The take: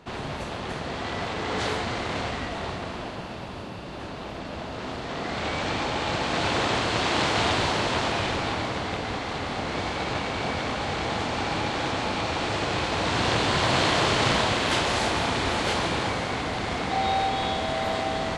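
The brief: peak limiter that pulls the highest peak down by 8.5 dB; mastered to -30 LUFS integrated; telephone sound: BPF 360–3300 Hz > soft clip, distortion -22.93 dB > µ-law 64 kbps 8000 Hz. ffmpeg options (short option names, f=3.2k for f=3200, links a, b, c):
-af "alimiter=limit=-17dB:level=0:latency=1,highpass=360,lowpass=3.3k,asoftclip=threshold=-19.5dB,volume=0.5dB" -ar 8000 -c:a pcm_mulaw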